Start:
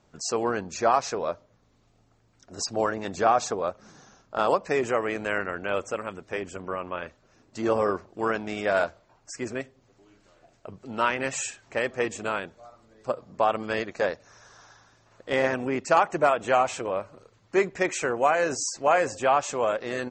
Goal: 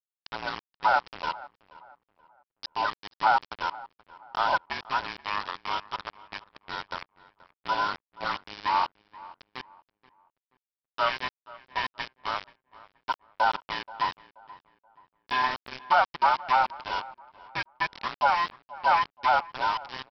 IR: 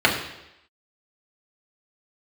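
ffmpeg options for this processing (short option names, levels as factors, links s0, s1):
-filter_complex "[0:a]afftfilt=real='real(if(between(b,1,1008),(2*floor((b-1)/24)+1)*24-b,b),0)':imag='imag(if(between(b,1,1008),(2*floor((b-1)/24)+1)*24-b,b),0)*if(between(b,1,1008),-1,1)':win_size=2048:overlap=0.75,highpass=550,bandreject=f=2000:w=8.6,aresample=11025,aeval=exprs='val(0)*gte(abs(val(0)),0.0355)':c=same,aresample=44100,asplit=2[s0][s1];[s1]adelay=479,lowpass=f=1900:p=1,volume=0.112,asplit=2[s2][s3];[s3]adelay=479,lowpass=f=1900:p=1,volume=0.37,asplit=2[s4][s5];[s5]adelay=479,lowpass=f=1900:p=1,volume=0.37[s6];[s0][s2][s4][s6]amix=inputs=4:normalize=0"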